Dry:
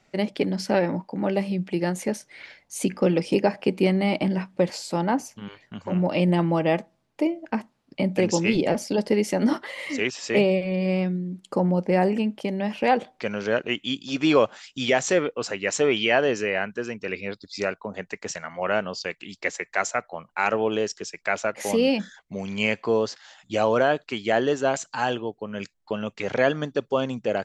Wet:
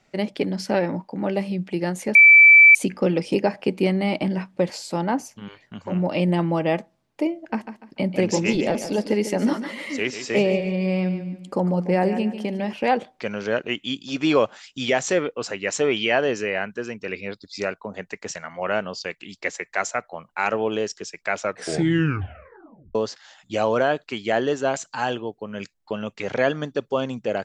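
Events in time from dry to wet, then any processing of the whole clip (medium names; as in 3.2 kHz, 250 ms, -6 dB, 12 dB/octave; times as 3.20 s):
2.15–2.75 s: bleep 2.32 kHz -6.5 dBFS
7.35–12.73 s: feedback delay 146 ms, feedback 33%, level -10.5 dB
21.39 s: tape stop 1.56 s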